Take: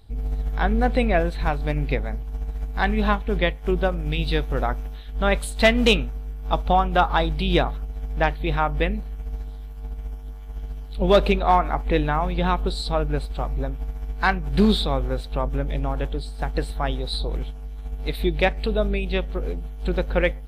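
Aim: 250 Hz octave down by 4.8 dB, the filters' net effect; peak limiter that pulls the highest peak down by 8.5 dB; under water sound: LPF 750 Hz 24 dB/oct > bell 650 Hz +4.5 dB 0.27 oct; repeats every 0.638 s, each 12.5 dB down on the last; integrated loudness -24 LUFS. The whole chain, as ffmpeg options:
-af "equalizer=f=250:t=o:g=-7,alimiter=limit=-14dB:level=0:latency=1,lowpass=f=750:w=0.5412,lowpass=f=750:w=1.3066,equalizer=f=650:t=o:w=0.27:g=4.5,aecho=1:1:638|1276|1914:0.237|0.0569|0.0137,volume=3.5dB"

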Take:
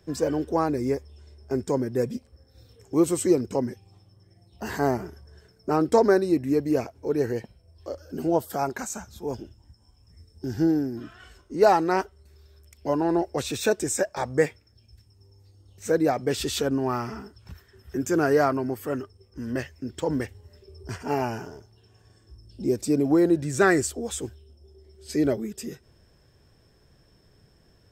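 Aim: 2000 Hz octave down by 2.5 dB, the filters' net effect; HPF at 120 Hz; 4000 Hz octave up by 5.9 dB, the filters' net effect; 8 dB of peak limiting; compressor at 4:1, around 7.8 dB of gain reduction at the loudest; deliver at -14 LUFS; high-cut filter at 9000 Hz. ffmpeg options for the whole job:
-af "highpass=120,lowpass=9k,equalizer=f=2k:t=o:g=-5,equalizer=f=4k:t=o:g=8.5,acompressor=threshold=-23dB:ratio=4,volume=18.5dB,alimiter=limit=-2.5dB:level=0:latency=1"

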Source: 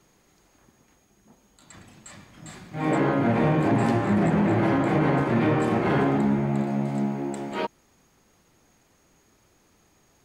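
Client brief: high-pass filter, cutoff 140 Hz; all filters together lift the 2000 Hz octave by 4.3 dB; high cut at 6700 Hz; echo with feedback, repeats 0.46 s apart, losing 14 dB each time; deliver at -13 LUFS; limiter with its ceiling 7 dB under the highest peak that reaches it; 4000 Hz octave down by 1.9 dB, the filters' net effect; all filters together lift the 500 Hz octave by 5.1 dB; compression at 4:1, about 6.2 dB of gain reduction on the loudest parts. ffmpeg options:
-af "highpass=140,lowpass=6.7k,equalizer=f=500:t=o:g=6.5,equalizer=f=2k:t=o:g=6,equalizer=f=4k:t=o:g=-5.5,acompressor=threshold=-23dB:ratio=4,alimiter=limit=-20.5dB:level=0:latency=1,aecho=1:1:460|920:0.2|0.0399,volume=16dB"

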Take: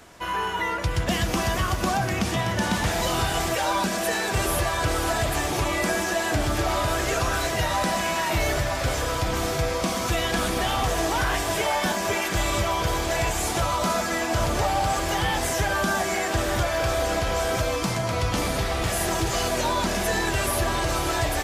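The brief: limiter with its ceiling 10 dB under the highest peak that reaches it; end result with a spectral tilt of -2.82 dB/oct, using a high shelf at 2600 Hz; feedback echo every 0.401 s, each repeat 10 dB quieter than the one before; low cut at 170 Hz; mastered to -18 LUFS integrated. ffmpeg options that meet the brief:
-af "highpass=170,highshelf=f=2.6k:g=6,alimiter=limit=-19dB:level=0:latency=1,aecho=1:1:401|802|1203|1604:0.316|0.101|0.0324|0.0104,volume=8.5dB"

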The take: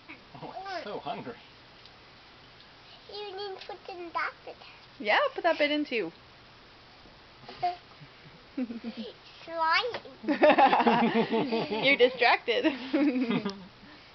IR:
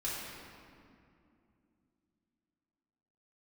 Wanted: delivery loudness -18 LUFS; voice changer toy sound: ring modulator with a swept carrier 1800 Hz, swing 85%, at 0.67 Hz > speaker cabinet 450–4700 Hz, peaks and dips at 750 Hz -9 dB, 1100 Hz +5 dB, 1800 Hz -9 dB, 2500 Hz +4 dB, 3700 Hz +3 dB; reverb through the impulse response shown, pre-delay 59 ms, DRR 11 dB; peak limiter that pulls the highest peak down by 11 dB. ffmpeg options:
-filter_complex "[0:a]alimiter=limit=-18dB:level=0:latency=1,asplit=2[a][b];[1:a]atrim=start_sample=2205,adelay=59[c];[b][c]afir=irnorm=-1:irlink=0,volume=-15dB[d];[a][d]amix=inputs=2:normalize=0,aeval=exprs='val(0)*sin(2*PI*1800*n/s+1800*0.85/0.67*sin(2*PI*0.67*n/s))':c=same,highpass=450,equalizer=f=750:t=q:w=4:g=-9,equalizer=f=1.1k:t=q:w=4:g=5,equalizer=f=1.8k:t=q:w=4:g=-9,equalizer=f=2.5k:t=q:w=4:g=4,equalizer=f=3.7k:t=q:w=4:g=3,lowpass=f=4.7k:w=0.5412,lowpass=f=4.7k:w=1.3066,volume=13.5dB"

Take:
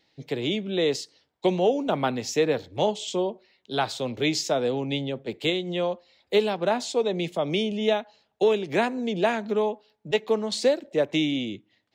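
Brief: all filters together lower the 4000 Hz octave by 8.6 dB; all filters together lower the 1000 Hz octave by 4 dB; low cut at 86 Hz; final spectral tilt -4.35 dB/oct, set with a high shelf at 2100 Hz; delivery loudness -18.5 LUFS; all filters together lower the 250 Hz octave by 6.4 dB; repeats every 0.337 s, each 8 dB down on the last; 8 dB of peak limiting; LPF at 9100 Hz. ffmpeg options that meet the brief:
-af "highpass=86,lowpass=9.1k,equalizer=f=250:t=o:g=-8.5,equalizer=f=1k:t=o:g=-3.5,highshelf=f=2.1k:g=-6,equalizer=f=4k:t=o:g=-5,alimiter=limit=-21.5dB:level=0:latency=1,aecho=1:1:337|674|1011|1348|1685:0.398|0.159|0.0637|0.0255|0.0102,volume=13.5dB"

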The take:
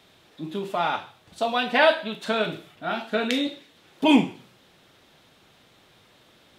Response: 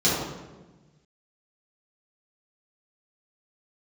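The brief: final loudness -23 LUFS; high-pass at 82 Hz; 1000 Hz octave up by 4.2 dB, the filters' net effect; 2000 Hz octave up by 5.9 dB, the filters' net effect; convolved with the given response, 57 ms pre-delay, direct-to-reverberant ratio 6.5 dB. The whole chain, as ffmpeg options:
-filter_complex "[0:a]highpass=82,equalizer=f=1k:t=o:g=4,equalizer=f=2k:t=o:g=6.5,asplit=2[a][b];[1:a]atrim=start_sample=2205,adelay=57[c];[b][c]afir=irnorm=-1:irlink=0,volume=-23dB[d];[a][d]amix=inputs=2:normalize=0,volume=-2.5dB"

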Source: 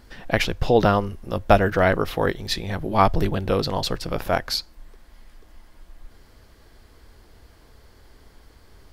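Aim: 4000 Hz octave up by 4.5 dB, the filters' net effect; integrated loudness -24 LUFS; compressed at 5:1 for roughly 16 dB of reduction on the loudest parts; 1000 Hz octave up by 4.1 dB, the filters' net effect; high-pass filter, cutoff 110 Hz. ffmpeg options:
-af "highpass=110,equalizer=f=1k:t=o:g=5.5,equalizer=f=4k:t=o:g=5,acompressor=threshold=-26dB:ratio=5,volume=6.5dB"

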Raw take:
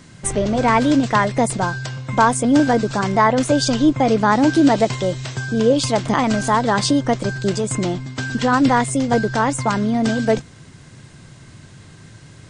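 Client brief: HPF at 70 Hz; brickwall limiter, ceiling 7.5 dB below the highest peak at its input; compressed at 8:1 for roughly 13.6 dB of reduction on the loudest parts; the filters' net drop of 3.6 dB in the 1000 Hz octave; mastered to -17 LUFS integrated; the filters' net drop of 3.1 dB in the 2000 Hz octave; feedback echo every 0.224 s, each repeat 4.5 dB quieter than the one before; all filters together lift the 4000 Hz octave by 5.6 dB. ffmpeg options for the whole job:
-af "highpass=70,equalizer=f=1k:t=o:g=-4,equalizer=f=2k:t=o:g=-4,equalizer=f=4k:t=o:g=8,acompressor=threshold=-25dB:ratio=8,alimiter=limit=-21dB:level=0:latency=1,aecho=1:1:224|448|672|896|1120|1344|1568|1792|2016:0.596|0.357|0.214|0.129|0.0772|0.0463|0.0278|0.0167|0.01,volume=12dB"

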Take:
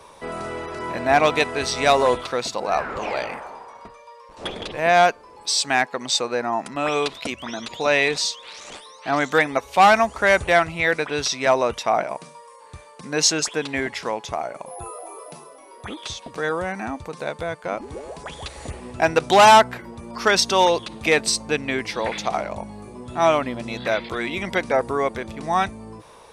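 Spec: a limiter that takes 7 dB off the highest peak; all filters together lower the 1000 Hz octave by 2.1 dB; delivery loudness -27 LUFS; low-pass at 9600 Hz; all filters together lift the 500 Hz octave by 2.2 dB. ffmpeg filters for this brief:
-af "lowpass=9.6k,equalizer=f=500:t=o:g=4.5,equalizer=f=1k:t=o:g=-5,volume=-3dB,alimiter=limit=-14.5dB:level=0:latency=1"

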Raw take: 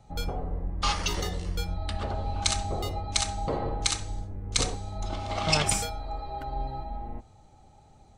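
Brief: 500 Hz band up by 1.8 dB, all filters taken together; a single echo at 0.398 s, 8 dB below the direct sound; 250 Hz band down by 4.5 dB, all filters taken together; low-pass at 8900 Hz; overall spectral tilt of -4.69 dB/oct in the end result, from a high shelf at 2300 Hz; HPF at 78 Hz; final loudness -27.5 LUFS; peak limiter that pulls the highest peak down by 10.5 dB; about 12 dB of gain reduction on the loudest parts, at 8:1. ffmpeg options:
-af "highpass=78,lowpass=8.9k,equalizer=f=250:t=o:g=-8.5,equalizer=f=500:t=o:g=4.5,highshelf=f=2.3k:g=-4,acompressor=threshold=-36dB:ratio=8,alimiter=level_in=7.5dB:limit=-24dB:level=0:latency=1,volume=-7.5dB,aecho=1:1:398:0.398,volume=14dB"

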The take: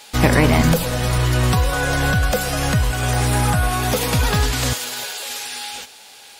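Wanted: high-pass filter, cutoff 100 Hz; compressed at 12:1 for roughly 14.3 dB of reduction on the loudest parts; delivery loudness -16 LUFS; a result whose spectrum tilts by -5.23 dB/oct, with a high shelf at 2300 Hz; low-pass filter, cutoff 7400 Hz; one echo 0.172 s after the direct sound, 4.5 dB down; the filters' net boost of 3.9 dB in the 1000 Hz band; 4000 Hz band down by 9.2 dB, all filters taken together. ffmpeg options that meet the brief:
-af "highpass=100,lowpass=7.4k,equalizer=f=1k:t=o:g=6.5,highshelf=f=2.3k:g=-5,equalizer=f=4k:t=o:g=-7.5,acompressor=threshold=-24dB:ratio=12,aecho=1:1:172:0.596,volume=11.5dB"

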